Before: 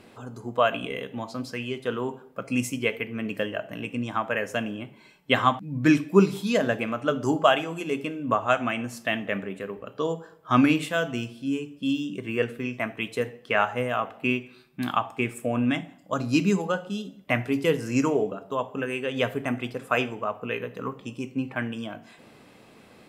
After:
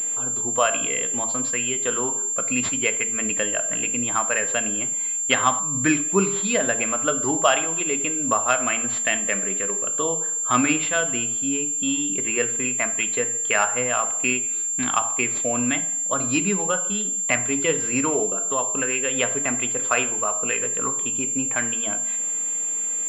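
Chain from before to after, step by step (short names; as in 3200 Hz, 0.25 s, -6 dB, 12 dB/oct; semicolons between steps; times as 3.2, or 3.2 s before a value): tilt +2.5 dB/oct; de-hum 57.06 Hz, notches 29; in parallel at +3 dB: compressor, threshold -34 dBFS, peak gain reduction 18 dB; on the sum: pulse-width modulation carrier 7300 Hz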